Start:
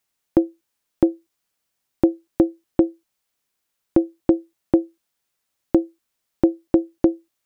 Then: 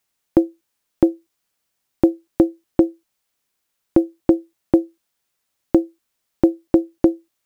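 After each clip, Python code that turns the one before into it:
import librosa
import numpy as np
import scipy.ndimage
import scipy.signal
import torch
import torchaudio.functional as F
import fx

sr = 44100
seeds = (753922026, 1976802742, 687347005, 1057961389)

y = fx.quant_float(x, sr, bits=6)
y = F.gain(torch.from_numpy(y), 2.0).numpy()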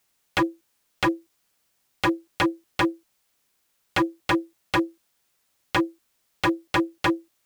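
y = 10.0 ** (-19.5 / 20.0) * (np.abs((x / 10.0 ** (-19.5 / 20.0) + 3.0) % 4.0 - 2.0) - 1.0)
y = F.gain(torch.from_numpy(y), 4.5).numpy()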